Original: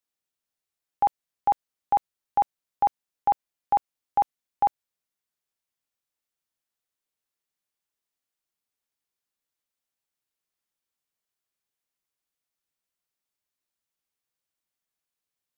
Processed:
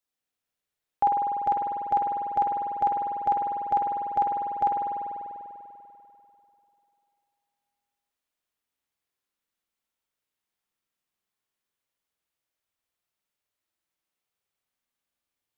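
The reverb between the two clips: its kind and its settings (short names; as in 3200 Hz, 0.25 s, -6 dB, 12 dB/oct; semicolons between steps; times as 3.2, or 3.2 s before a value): spring tank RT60 2.9 s, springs 49 ms, chirp 20 ms, DRR -2 dB; gain -1 dB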